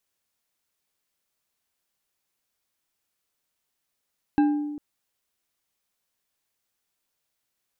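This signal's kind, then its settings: glass hit bar, length 0.40 s, lowest mode 295 Hz, decay 1.29 s, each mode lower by 9 dB, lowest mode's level -15 dB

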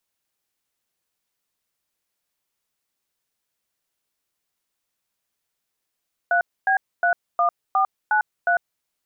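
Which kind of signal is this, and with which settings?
DTMF "3B31493", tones 100 ms, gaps 260 ms, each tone -18.5 dBFS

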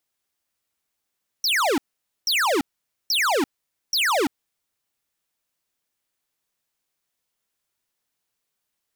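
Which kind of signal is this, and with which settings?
burst of laser zaps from 5.9 kHz, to 250 Hz, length 0.34 s square, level -20.5 dB, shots 4, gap 0.49 s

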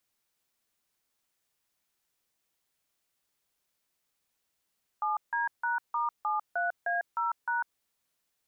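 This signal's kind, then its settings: DTMF "7D#*73A0#", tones 149 ms, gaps 158 ms, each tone -29.5 dBFS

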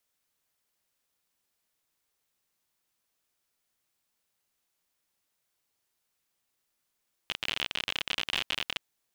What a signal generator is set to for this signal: random clicks 55 per s -14 dBFS 1.52 s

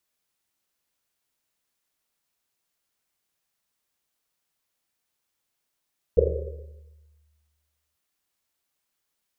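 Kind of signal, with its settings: Risset drum length 1.79 s, pitch 75 Hz, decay 1.74 s, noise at 470 Hz, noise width 170 Hz, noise 55%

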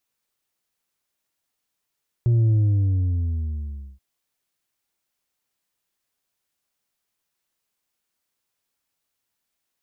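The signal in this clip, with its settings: sub drop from 120 Hz, over 1.73 s, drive 4 dB, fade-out 1.48 s, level -15.5 dB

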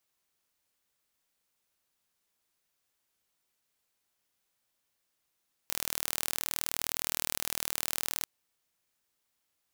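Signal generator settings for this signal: pulse train 39.4 per s, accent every 0, -4.5 dBFS 2.55 s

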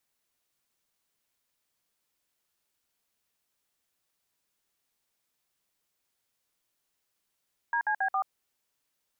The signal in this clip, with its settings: DTMF "DCB4", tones 81 ms, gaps 56 ms, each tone -27.5 dBFS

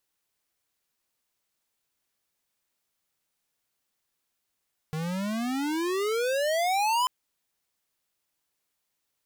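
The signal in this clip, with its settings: gliding synth tone square, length 2.14 s, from 153 Hz, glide +33 st, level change +7 dB, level -24 dB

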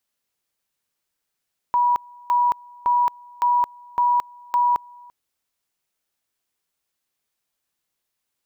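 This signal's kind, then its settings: two-level tone 971 Hz -15 dBFS, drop 26.5 dB, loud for 0.22 s, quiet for 0.34 s, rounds 6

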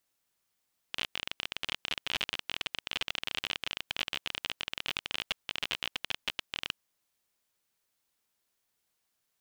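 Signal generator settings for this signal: random clicks 32 per s -15 dBFS 5.80 s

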